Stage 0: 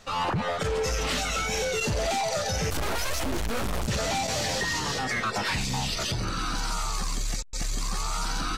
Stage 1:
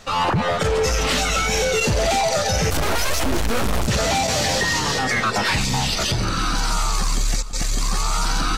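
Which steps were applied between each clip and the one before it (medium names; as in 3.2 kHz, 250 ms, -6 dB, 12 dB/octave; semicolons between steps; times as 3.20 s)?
echo whose repeats swap between lows and highs 170 ms, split 920 Hz, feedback 67%, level -14 dB; trim +7.5 dB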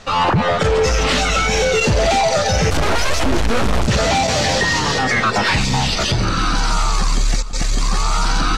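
distance through air 57 m; trim +4.5 dB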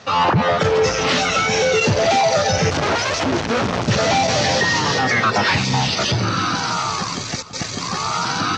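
elliptic band-pass 100–6200 Hz, stop band 50 dB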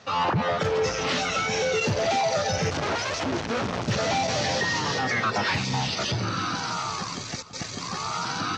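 hard clipper -8 dBFS, distortion -40 dB; trim -8 dB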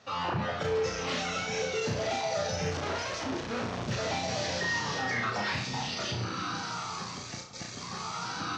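flutter echo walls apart 5.8 m, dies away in 0.41 s; trim -8 dB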